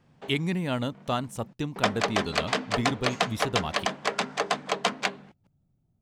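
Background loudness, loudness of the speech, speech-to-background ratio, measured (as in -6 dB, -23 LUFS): -28.5 LUFS, -31.5 LUFS, -3.0 dB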